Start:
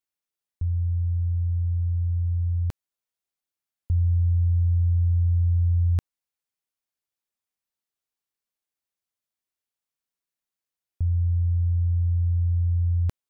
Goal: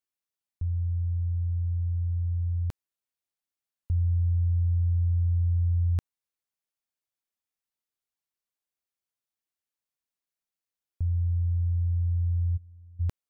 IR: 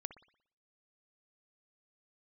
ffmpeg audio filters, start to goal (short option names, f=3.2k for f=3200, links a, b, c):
-filter_complex "[0:a]asplit=3[a][b][c];[a]afade=t=out:st=12.56:d=0.02[d];[b]agate=range=-33dB:threshold=-8dB:ratio=3:detection=peak,afade=t=in:st=12.56:d=0.02,afade=t=out:st=12.99:d=0.02[e];[c]afade=t=in:st=12.99:d=0.02[f];[d][e][f]amix=inputs=3:normalize=0,volume=-3.5dB"